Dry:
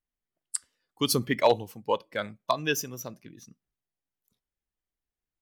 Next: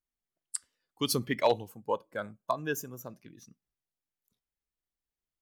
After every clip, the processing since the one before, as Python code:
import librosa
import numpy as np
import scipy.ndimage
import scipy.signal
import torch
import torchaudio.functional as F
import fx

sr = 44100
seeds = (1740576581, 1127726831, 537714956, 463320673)

y = fx.spec_box(x, sr, start_s=1.69, length_s=1.42, low_hz=1700.0, high_hz=6300.0, gain_db=-10)
y = y * 10.0 ** (-4.0 / 20.0)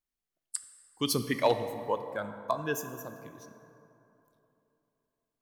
y = fx.rev_plate(x, sr, seeds[0], rt60_s=3.1, hf_ratio=0.45, predelay_ms=0, drr_db=8.5)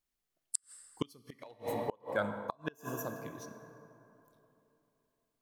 y = fx.gate_flip(x, sr, shuts_db=-22.0, range_db=-32)
y = y * 10.0 ** (3.0 / 20.0)